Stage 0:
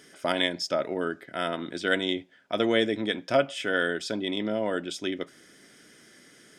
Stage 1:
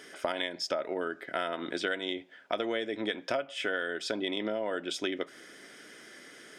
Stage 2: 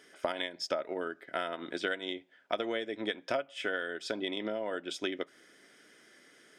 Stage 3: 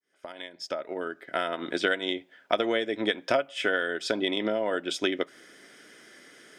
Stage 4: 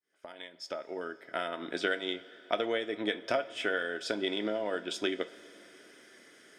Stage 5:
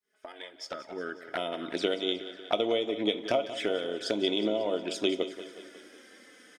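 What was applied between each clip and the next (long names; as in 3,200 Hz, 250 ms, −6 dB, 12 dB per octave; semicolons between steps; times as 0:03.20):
bass and treble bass −12 dB, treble −6 dB; downward compressor 12 to 1, threshold −34 dBFS, peak gain reduction 17 dB; level +6 dB
expander for the loud parts 1.5 to 1, over −45 dBFS
fade in at the beginning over 1.76 s; level +7.5 dB
coupled-rooms reverb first 0.24 s, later 4.1 s, from −19 dB, DRR 9.5 dB; level −5.5 dB
flanger swept by the level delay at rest 4.8 ms, full sweep at −31 dBFS; repeating echo 182 ms, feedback 56%, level −13.5 dB; level +5 dB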